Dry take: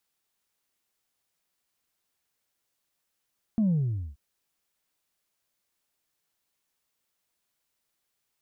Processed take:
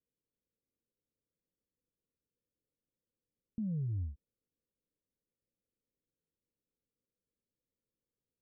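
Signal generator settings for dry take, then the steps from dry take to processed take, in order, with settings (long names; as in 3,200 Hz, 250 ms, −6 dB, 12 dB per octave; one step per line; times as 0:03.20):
bass drop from 230 Hz, over 0.58 s, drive 0.5 dB, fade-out 0.47 s, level −21 dB
elliptic low-pass filter 520 Hz
notch filter 370 Hz, Q 12
brickwall limiter −32 dBFS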